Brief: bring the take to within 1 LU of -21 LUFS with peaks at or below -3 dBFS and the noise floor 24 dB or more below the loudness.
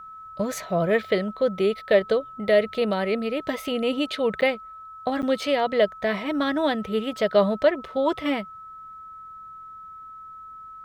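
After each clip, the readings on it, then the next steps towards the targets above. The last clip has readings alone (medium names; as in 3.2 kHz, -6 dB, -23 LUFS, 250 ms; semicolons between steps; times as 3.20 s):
dropouts 2; longest dropout 8.6 ms; steady tone 1.3 kHz; tone level -39 dBFS; loudness -24.0 LUFS; peak level -7.0 dBFS; loudness target -21.0 LUFS
-> interpolate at 4.41/5.22 s, 8.6 ms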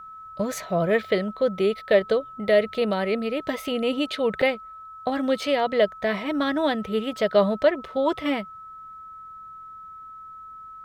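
dropouts 0; steady tone 1.3 kHz; tone level -39 dBFS
-> band-stop 1.3 kHz, Q 30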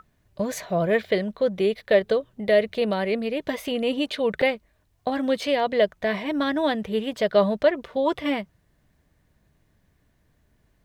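steady tone not found; loudness -24.5 LUFS; peak level -7.0 dBFS; loudness target -21.0 LUFS
-> trim +3.5 dB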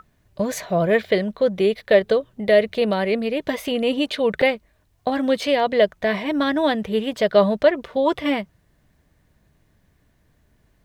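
loudness -21.0 LUFS; peak level -3.5 dBFS; noise floor -63 dBFS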